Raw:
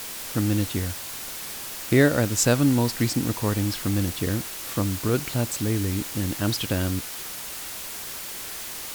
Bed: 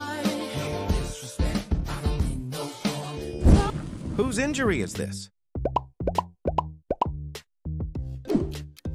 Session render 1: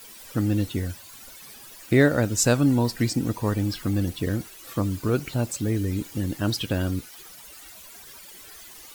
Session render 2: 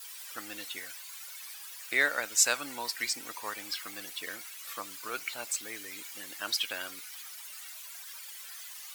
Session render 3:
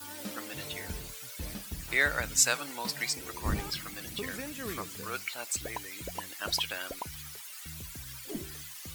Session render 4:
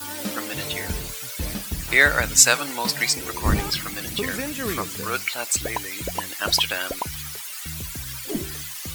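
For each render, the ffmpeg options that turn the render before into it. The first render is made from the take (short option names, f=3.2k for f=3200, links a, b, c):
-af "afftdn=nr=14:nf=-36"
-af "highpass=1.2k,adynamicequalizer=threshold=0.00178:dfrequency=2200:dqfactor=7.2:tfrequency=2200:tqfactor=7.2:attack=5:release=100:ratio=0.375:range=3:mode=boostabove:tftype=bell"
-filter_complex "[1:a]volume=-15.5dB[a];[0:a][a]amix=inputs=2:normalize=0"
-af "volume=10.5dB,alimiter=limit=-1dB:level=0:latency=1"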